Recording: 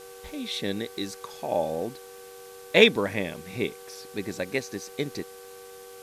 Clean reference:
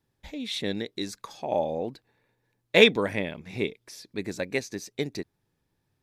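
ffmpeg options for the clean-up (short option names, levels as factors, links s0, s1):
-af "adeclick=t=4,bandreject=f=384.8:t=h:w=4,bandreject=f=769.6:t=h:w=4,bandreject=f=1154.4:t=h:w=4,bandreject=f=1539.2:t=h:w=4,bandreject=f=480:w=30,afftdn=nr=30:nf=-45"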